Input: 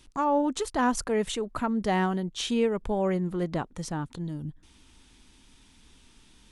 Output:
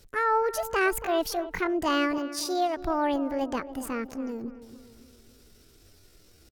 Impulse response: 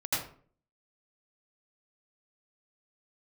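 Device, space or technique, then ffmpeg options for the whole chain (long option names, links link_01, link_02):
chipmunk voice: -filter_complex "[0:a]asettb=1/sr,asplit=3[link_01][link_02][link_03];[link_01]atrim=end=2.184[link_04];[link_02]atrim=start=2.18:end=2.79,asetpts=PTS-STARTPTS,afade=type=in:duration=0.004:curve=qsin,afade=type=out:start_time=0.606:duration=0.004:curve=qsin,highpass=frequency=240:poles=1[link_05];[link_03]atrim=start=2.786[link_06];[link_04][link_05]acrossfade=duration=0.004:curve1=hsin:curve2=qsin[link_07];[link_07][link_06]acrossfade=duration=0.004:curve1=qsin:curve2=hsin,asetrate=68011,aresample=44100,atempo=0.64842,asplit=2[link_08][link_09];[link_09]adelay=280,lowpass=frequency=1600:poles=1,volume=-13dB,asplit=2[link_10][link_11];[link_11]adelay=280,lowpass=frequency=1600:poles=1,volume=0.48,asplit=2[link_12][link_13];[link_13]adelay=280,lowpass=frequency=1600:poles=1,volume=0.48,asplit=2[link_14][link_15];[link_15]adelay=280,lowpass=frequency=1600:poles=1,volume=0.48,asplit=2[link_16][link_17];[link_17]adelay=280,lowpass=frequency=1600:poles=1,volume=0.48[link_18];[link_08][link_10][link_12][link_14][link_16][link_18]amix=inputs=6:normalize=0"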